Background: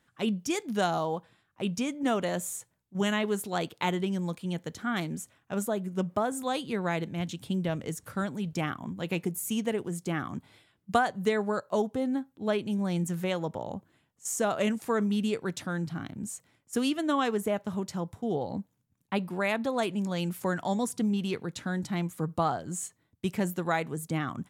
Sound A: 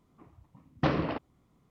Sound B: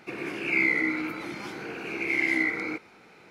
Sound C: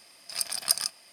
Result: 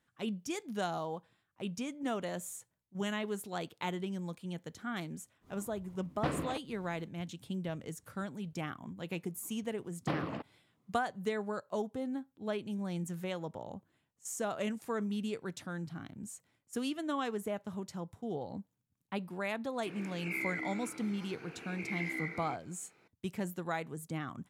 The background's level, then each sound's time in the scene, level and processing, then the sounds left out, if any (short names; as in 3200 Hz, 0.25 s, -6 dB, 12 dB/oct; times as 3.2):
background -8 dB
5.4 add A -7.5 dB, fades 0.10 s + upward compressor 4:1, threshold -41 dBFS
9.24 add A -8 dB + HPF 99 Hz 24 dB/oct
19.78 add B -13.5 dB
not used: C